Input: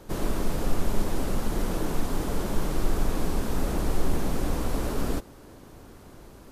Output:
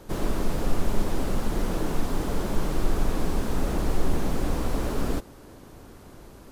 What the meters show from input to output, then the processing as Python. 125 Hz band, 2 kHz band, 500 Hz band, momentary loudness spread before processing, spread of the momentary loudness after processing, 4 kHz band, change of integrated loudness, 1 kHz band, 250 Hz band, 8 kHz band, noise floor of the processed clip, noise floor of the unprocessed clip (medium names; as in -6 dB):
+1.0 dB, +1.0 dB, +1.0 dB, 19 LU, 19 LU, +0.5 dB, +1.0 dB, +1.0 dB, +1.0 dB, -1.0 dB, -48 dBFS, -49 dBFS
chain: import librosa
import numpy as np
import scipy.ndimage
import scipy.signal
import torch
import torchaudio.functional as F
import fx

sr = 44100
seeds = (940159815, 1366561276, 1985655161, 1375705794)

y = fx.slew_limit(x, sr, full_power_hz=51.0)
y = F.gain(torch.from_numpy(y), 1.0).numpy()